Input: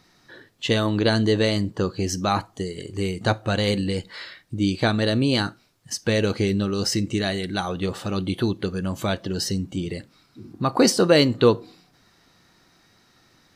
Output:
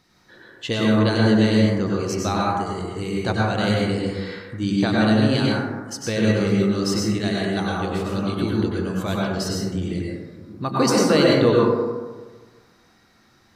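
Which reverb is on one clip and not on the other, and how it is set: plate-style reverb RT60 1.4 s, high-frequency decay 0.3×, pre-delay 85 ms, DRR -4.5 dB; gain -4 dB

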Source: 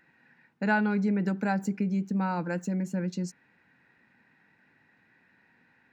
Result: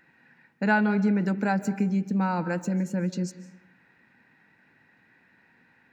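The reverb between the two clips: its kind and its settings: digital reverb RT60 0.83 s, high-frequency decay 0.65×, pre-delay 0.11 s, DRR 14.5 dB; gain +3 dB

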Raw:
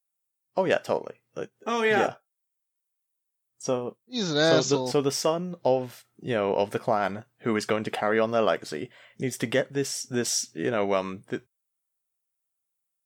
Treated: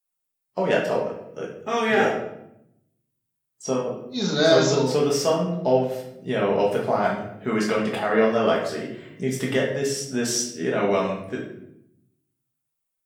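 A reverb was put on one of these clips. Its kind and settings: shoebox room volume 200 m³, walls mixed, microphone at 1.4 m; gain -2 dB

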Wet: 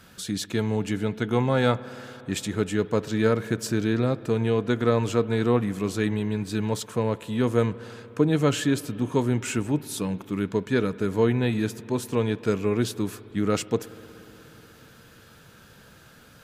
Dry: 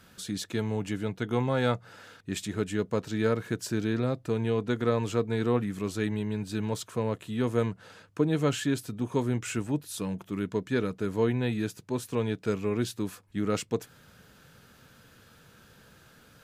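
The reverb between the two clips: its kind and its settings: spring tank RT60 3.8 s, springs 60 ms, chirp 60 ms, DRR 17 dB; gain +4.5 dB

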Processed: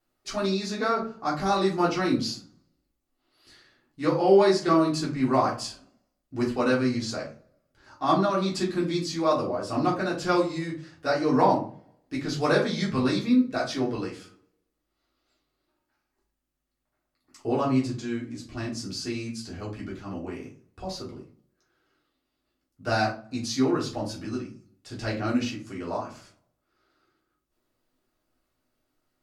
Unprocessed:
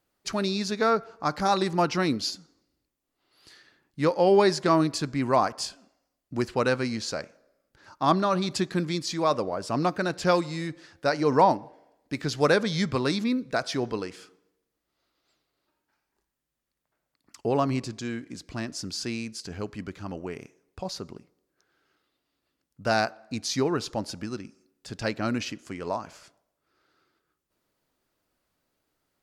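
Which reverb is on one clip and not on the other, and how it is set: shoebox room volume 190 m³, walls furnished, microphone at 3.4 m; gain -8 dB

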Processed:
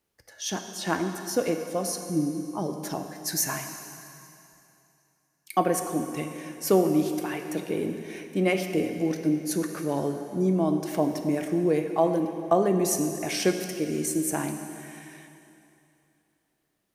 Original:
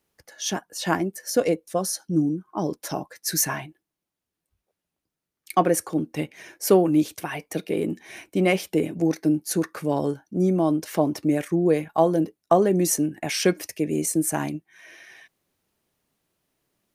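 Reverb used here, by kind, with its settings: plate-style reverb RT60 2.8 s, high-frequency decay 0.95×, DRR 5.5 dB; gain -4 dB

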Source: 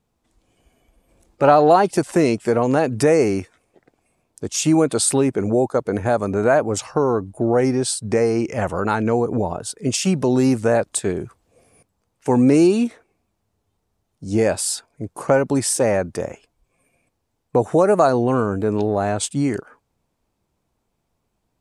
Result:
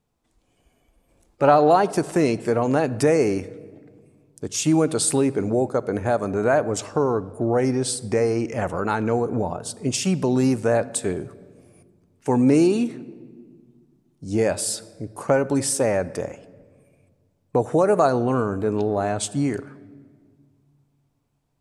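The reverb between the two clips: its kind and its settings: shoebox room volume 2400 m³, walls mixed, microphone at 0.33 m; gain -3 dB

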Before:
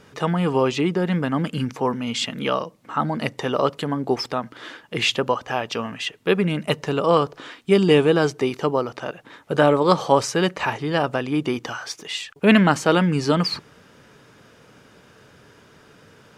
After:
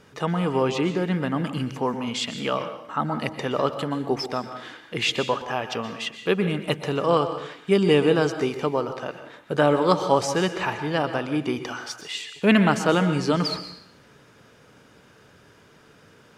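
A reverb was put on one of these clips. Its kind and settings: plate-style reverb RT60 0.64 s, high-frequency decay 0.95×, pre-delay 0.11 s, DRR 9 dB; gain -3 dB

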